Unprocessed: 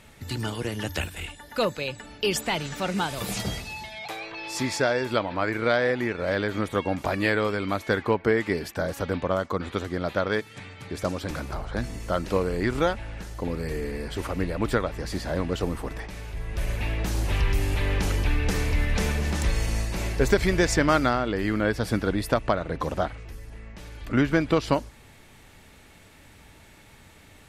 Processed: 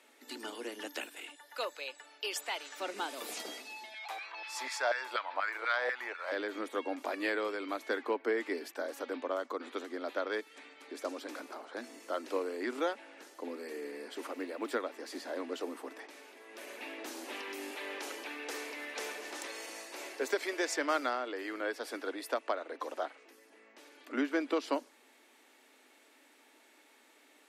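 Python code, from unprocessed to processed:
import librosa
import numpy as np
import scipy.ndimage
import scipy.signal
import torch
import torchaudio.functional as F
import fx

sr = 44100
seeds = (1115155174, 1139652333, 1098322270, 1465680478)

y = fx.highpass(x, sr, hz=620.0, slope=12, at=(1.36, 2.8))
y = fx.filter_lfo_highpass(y, sr, shape='saw_down', hz=4.1, low_hz=640.0, high_hz=1600.0, q=2.0, at=(3.94, 6.32))
y = fx.quant_float(y, sr, bits=6, at=(14.32, 15.09))
y = fx.highpass(y, sr, hz=370.0, slope=12, at=(17.7, 23.21))
y = scipy.signal.sosfilt(scipy.signal.butter(12, 250.0, 'highpass', fs=sr, output='sos'), y)
y = F.gain(torch.from_numpy(y), -9.0).numpy()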